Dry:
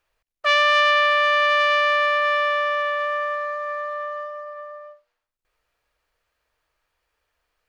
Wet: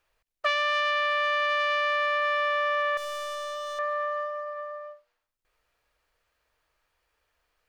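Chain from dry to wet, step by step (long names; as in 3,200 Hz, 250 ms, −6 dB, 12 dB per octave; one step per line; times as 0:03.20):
0:02.97–0:03.79: hard clipping −31 dBFS, distortion −16 dB
downward compressor 6 to 1, threshold −22 dBFS, peak gain reduction 9.5 dB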